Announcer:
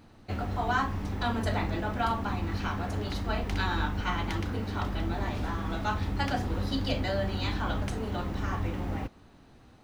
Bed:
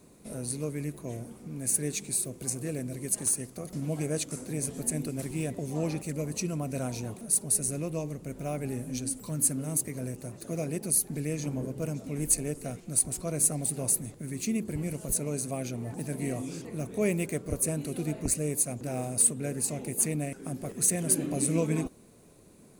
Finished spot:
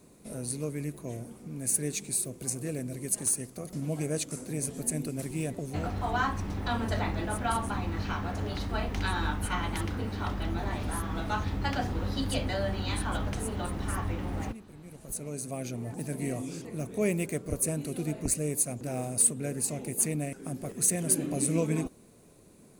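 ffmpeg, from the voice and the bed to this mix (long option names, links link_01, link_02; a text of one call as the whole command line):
ffmpeg -i stem1.wav -i stem2.wav -filter_complex "[0:a]adelay=5450,volume=-1dB[link_01];[1:a]volume=15.5dB,afade=type=out:start_time=5.58:duration=0.36:silence=0.158489,afade=type=in:start_time=14.84:duration=0.94:silence=0.158489[link_02];[link_01][link_02]amix=inputs=2:normalize=0" out.wav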